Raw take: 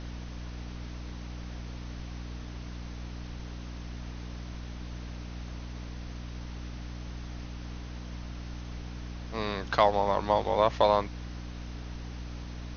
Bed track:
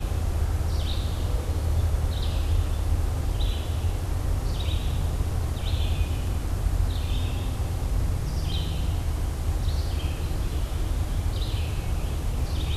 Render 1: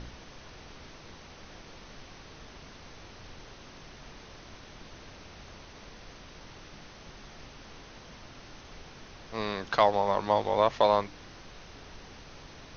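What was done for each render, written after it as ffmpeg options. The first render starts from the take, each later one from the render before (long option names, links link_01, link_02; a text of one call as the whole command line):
ffmpeg -i in.wav -af "bandreject=frequency=60:width_type=h:width=4,bandreject=frequency=120:width_type=h:width=4,bandreject=frequency=180:width_type=h:width=4,bandreject=frequency=240:width_type=h:width=4,bandreject=frequency=300:width_type=h:width=4" out.wav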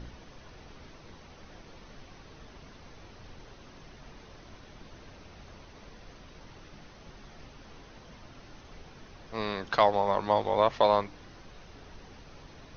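ffmpeg -i in.wav -af "afftdn=noise_reduction=6:noise_floor=-50" out.wav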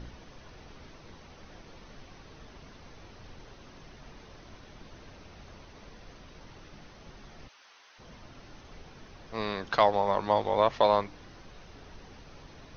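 ffmpeg -i in.wav -filter_complex "[0:a]asplit=3[link_01][link_02][link_03];[link_01]afade=type=out:start_time=7.47:duration=0.02[link_04];[link_02]highpass=1100,afade=type=in:start_time=7.47:duration=0.02,afade=type=out:start_time=7.98:duration=0.02[link_05];[link_03]afade=type=in:start_time=7.98:duration=0.02[link_06];[link_04][link_05][link_06]amix=inputs=3:normalize=0" out.wav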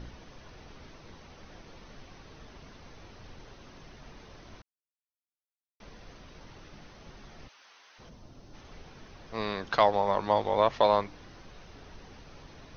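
ffmpeg -i in.wav -filter_complex "[0:a]asplit=3[link_01][link_02][link_03];[link_01]afade=type=out:start_time=8.08:duration=0.02[link_04];[link_02]equalizer=frequency=2000:width=0.57:gain=-11,afade=type=in:start_time=8.08:duration=0.02,afade=type=out:start_time=8.53:duration=0.02[link_05];[link_03]afade=type=in:start_time=8.53:duration=0.02[link_06];[link_04][link_05][link_06]amix=inputs=3:normalize=0,asplit=3[link_07][link_08][link_09];[link_07]atrim=end=4.62,asetpts=PTS-STARTPTS,afade=type=out:start_time=4.616:duration=0.004:curve=hsin[link_10];[link_08]atrim=start=4.62:end=5.8,asetpts=PTS-STARTPTS,volume=0[link_11];[link_09]atrim=start=5.8,asetpts=PTS-STARTPTS,afade=type=in:duration=0.004:curve=hsin[link_12];[link_10][link_11][link_12]concat=n=3:v=0:a=1" out.wav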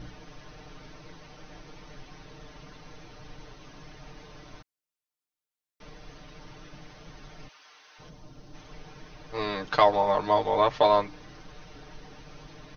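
ffmpeg -i in.wav -af "aecho=1:1:6.6:0.9" out.wav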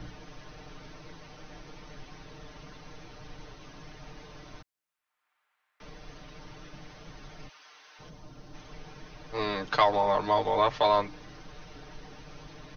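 ffmpeg -i in.wav -filter_complex "[0:a]acrossover=split=120|830|2200[link_01][link_02][link_03][link_04];[link_02]alimiter=limit=-20.5dB:level=0:latency=1[link_05];[link_03]acompressor=mode=upward:threshold=-56dB:ratio=2.5[link_06];[link_01][link_05][link_06][link_04]amix=inputs=4:normalize=0" out.wav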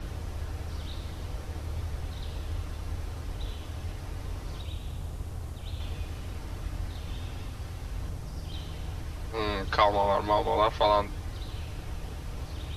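ffmpeg -i in.wav -i bed.wav -filter_complex "[1:a]volume=-10.5dB[link_01];[0:a][link_01]amix=inputs=2:normalize=0" out.wav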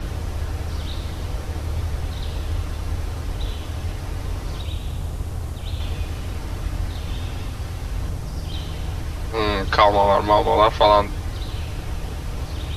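ffmpeg -i in.wav -af "volume=9dB,alimiter=limit=-2dB:level=0:latency=1" out.wav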